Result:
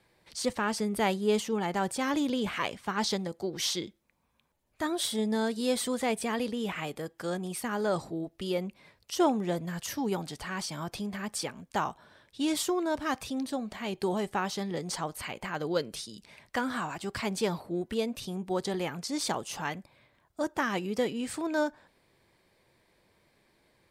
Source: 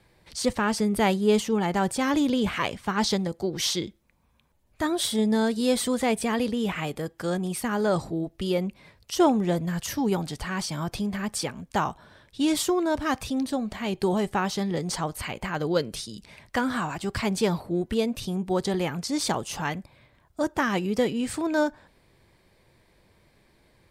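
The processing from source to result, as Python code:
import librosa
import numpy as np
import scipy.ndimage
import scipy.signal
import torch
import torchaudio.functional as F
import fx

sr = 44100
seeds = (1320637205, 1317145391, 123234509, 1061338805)

y = fx.low_shelf(x, sr, hz=130.0, db=-10.5)
y = y * 10.0 ** (-4.0 / 20.0)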